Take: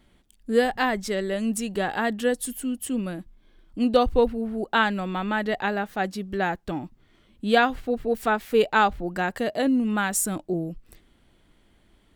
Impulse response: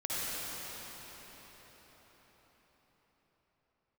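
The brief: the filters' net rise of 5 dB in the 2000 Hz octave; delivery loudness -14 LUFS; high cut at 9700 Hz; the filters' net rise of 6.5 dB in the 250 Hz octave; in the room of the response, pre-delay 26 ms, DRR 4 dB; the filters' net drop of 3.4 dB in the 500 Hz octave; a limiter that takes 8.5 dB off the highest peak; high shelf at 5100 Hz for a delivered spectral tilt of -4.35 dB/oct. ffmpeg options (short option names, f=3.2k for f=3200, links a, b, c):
-filter_complex "[0:a]lowpass=9.7k,equalizer=f=250:t=o:g=8.5,equalizer=f=500:t=o:g=-6.5,equalizer=f=2k:t=o:g=6,highshelf=f=5.1k:g=8.5,alimiter=limit=-12.5dB:level=0:latency=1,asplit=2[a][b];[1:a]atrim=start_sample=2205,adelay=26[c];[b][c]afir=irnorm=-1:irlink=0,volume=-11.5dB[d];[a][d]amix=inputs=2:normalize=0,volume=8.5dB"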